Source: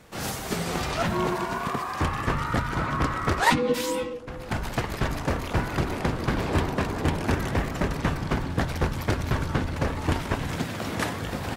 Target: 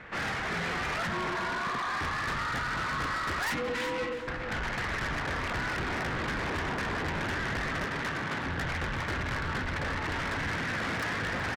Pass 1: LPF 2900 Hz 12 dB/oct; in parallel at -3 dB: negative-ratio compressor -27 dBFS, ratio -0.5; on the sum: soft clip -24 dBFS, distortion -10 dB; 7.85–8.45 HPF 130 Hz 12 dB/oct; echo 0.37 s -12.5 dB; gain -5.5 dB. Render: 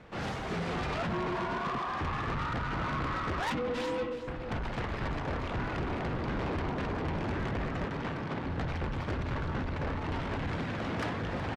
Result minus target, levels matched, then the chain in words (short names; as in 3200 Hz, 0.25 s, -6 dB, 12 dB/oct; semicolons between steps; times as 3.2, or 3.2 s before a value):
2000 Hz band -5.5 dB
LPF 2900 Hz 12 dB/oct; bell 1800 Hz +13.5 dB 1.3 oct; in parallel at -3 dB: negative-ratio compressor -27 dBFS, ratio -0.5; on the sum: soft clip -24 dBFS, distortion -7 dB; 7.85–8.45 HPF 130 Hz 12 dB/oct; echo 0.37 s -12.5 dB; gain -5.5 dB